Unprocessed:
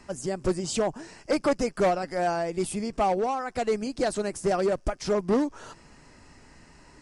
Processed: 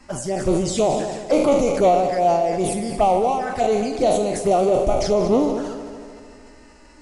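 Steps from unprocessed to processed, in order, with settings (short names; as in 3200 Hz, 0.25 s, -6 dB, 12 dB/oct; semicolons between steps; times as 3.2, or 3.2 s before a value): spectral trails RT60 0.48 s; envelope flanger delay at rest 4 ms, full sweep at -23 dBFS; dynamic EQ 700 Hz, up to +6 dB, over -40 dBFS, Q 2.2; multi-head echo 75 ms, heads second and third, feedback 59%, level -13.5 dB; sustainer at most 42 dB/s; gain +4 dB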